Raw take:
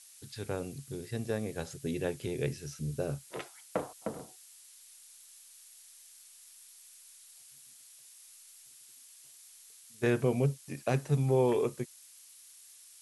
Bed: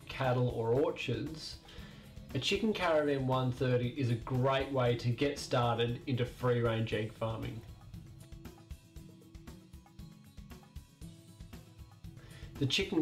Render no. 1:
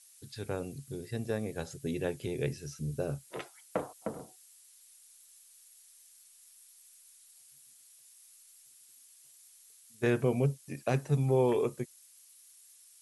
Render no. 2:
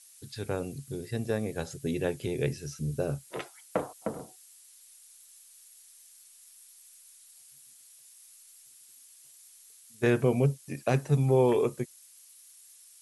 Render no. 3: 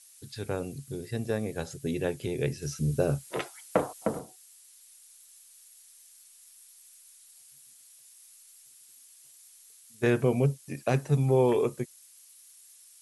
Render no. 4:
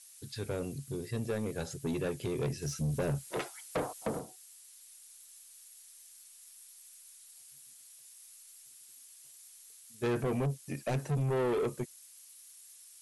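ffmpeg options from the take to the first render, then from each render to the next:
-af "afftdn=nr=6:nf=-56"
-af "volume=3.5dB"
-filter_complex "[0:a]asplit=3[a][b][c];[a]atrim=end=2.622[d];[b]atrim=start=2.618:end=4.192,asetpts=PTS-STARTPTS,volume=4.5dB[e];[c]atrim=start=4.188[f];[d][e]acrossfade=d=0.004:c1=hsin:c2=hsin[g];[g][f]acrossfade=d=0.004:c1=hsin:c2=hsin"
-af "asoftclip=type=tanh:threshold=-27.5dB"

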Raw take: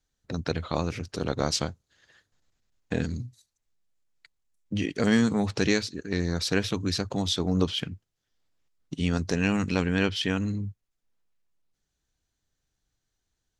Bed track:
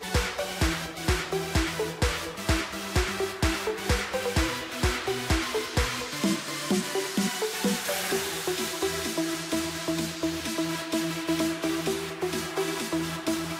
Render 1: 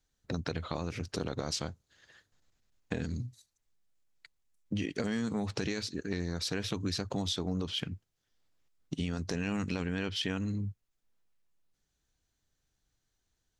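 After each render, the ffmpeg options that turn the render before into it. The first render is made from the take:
-af "alimiter=limit=-16dB:level=0:latency=1:release=18,acompressor=threshold=-30dB:ratio=6"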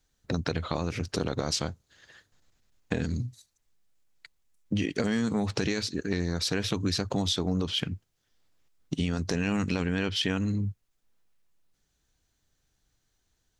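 -af "volume=5.5dB"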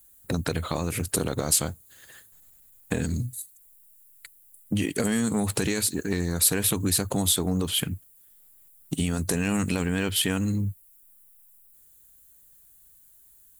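-filter_complex "[0:a]aexciter=amount=14.4:drive=8.1:freq=8.4k,asplit=2[a][b];[b]asoftclip=type=tanh:threshold=-26dB,volume=-7dB[c];[a][c]amix=inputs=2:normalize=0"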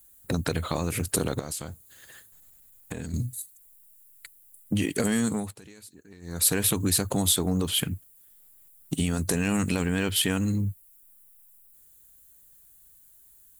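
-filter_complex "[0:a]asettb=1/sr,asplit=3[a][b][c];[a]atrim=end=1.394[d];[b]atrim=start=1.39:end=3.14,asetpts=PTS-STARTPTS,afade=t=in:d=0.004:c=qsin,afade=t=out:st=1.746:d=0.004:c=qsin,acompressor=threshold=-31dB:ratio=5:attack=3.2:release=140:knee=1:detection=peak[e];[c]atrim=start=3.136[f];[d][e]acrossfade=d=0.004:c1=hsin:c2=qsin[g];[g][f]acrossfade=d=0.004:c1=qsin:c2=hsin,asplit=3[h][i][j];[h]atrim=end=5.55,asetpts=PTS-STARTPTS,afade=t=out:st=5.26:d=0.29:silence=0.0749894[k];[i]atrim=start=5.55:end=6.21,asetpts=PTS-STARTPTS,volume=-22.5dB[l];[j]atrim=start=6.21,asetpts=PTS-STARTPTS,afade=t=in:d=0.29:silence=0.0749894[m];[k][l][m]concat=n=3:v=0:a=1"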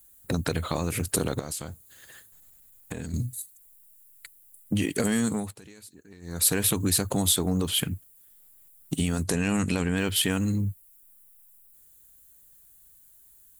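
-filter_complex "[0:a]asettb=1/sr,asplit=3[a][b][c];[a]atrim=end=9.234[d];[b]atrim=start=9.23:end=9.97,asetpts=PTS-STARTPTS,afade=t=in:d=0.004:c=qsin,afade=t=out:st=0.736:d=0.004:c=qsin,lowpass=10k[e];[c]atrim=start=9.966[f];[d][e]acrossfade=d=0.004:c1=hsin:c2=qsin[g];[g][f]acrossfade=d=0.004:c1=qsin:c2=hsin"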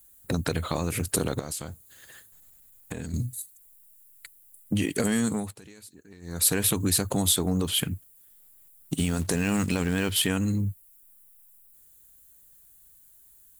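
-filter_complex "[0:a]asettb=1/sr,asplit=3[a][b][c];[a]atrim=end=8.954[d];[b]atrim=start=8.95:end=10.27,asetpts=PTS-STARTPTS,afade=t=in:d=0.004:c=qsin,afade=t=out:st=1.316:d=0.004:c=qsin,acrusher=bits=5:mode=log:mix=0:aa=0.000001[e];[c]atrim=start=10.266[f];[d][e]acrossfade=d=0.004:c1=hsin:c2=qsin[g];[g][f]acrossfade=d=0.004:c1=qsin:c2=hsin"

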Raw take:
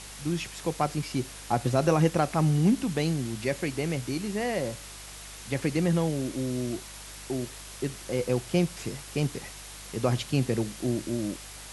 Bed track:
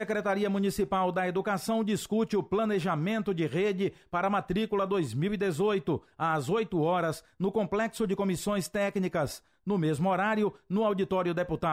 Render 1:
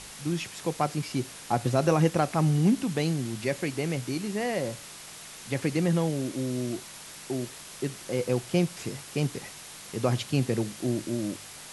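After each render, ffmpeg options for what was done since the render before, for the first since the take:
-af "bandreject=f=50:t=h:w=4,bandreject=f=100:t=h:w=4"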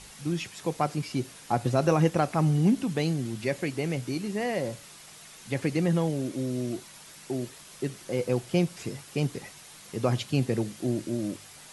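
-af "afftdn=nr=6:nf=-45"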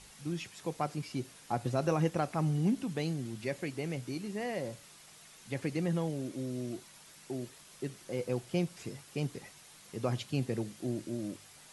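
-af "volume=-7dB"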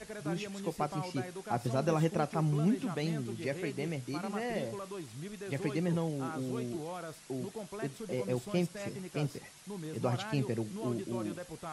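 -filter_complex "[1:a]volume=-14dB[a];[0:a][a]amix=inputs=2:normalize=0"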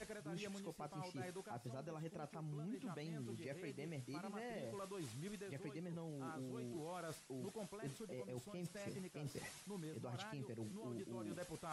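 -af "alimiter=level_in=2dB:limit=-24dB:level=0:latency=1:release=197,volume=-2dB,areverse,acompressor=threshold=-45dB:ratio=12,areverse"

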